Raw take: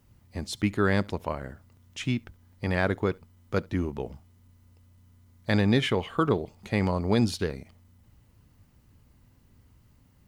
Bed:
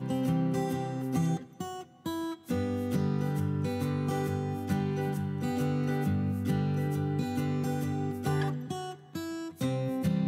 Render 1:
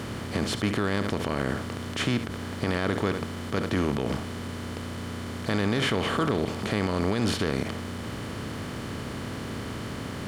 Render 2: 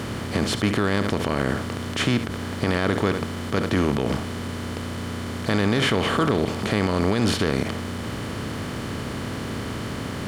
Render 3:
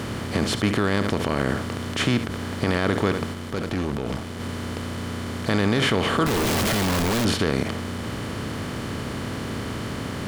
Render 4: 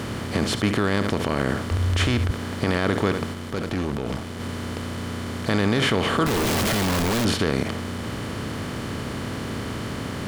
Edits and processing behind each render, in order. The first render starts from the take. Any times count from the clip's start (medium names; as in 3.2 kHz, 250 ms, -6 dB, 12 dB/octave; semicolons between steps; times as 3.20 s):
spectral levelling over time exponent 0.4; peak limiter -15.5 dBFS, peak gain reduction 10.5 dB
trim +4.5 dB
3.33–4.40 s: valve stage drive 21 dB, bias 0.65; 6.26–7.25 s: one-bit comparator
1.71–2.31 s: resonant low shelf 110 Hz +10 dB, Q 3